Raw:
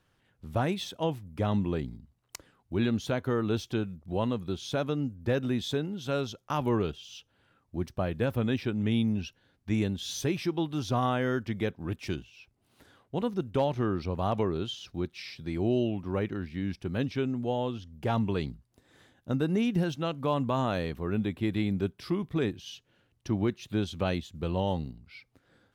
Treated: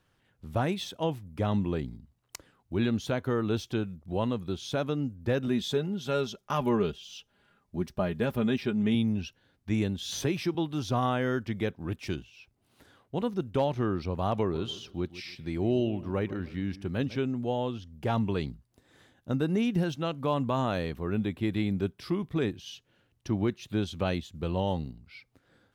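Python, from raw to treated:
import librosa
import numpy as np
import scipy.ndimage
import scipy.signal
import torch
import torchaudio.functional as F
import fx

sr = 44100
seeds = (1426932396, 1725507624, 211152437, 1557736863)

y = fx.comb(x, sr, ms=4.9, depth=0.56, at=(5.47, 8.95))
y = fx.band_squash(y, sr, depth_pct=40, at=(10.12, 10.55))
y = fx.echo_wet_lowpass(y, sr, ms=149, feedback_pct=32, hz=2000.0, wet_db=-16, at=(14.49, 17.15), fade=0.02)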